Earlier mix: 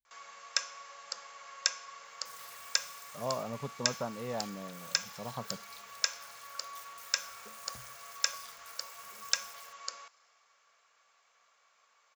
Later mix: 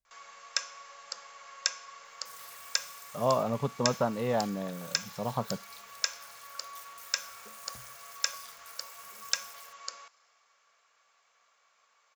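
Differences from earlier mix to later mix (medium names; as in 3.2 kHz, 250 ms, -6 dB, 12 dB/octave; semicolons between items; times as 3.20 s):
speech +8.5 dB; second sound: add peaking EQ 13 kHz +3 dB 1.2 oct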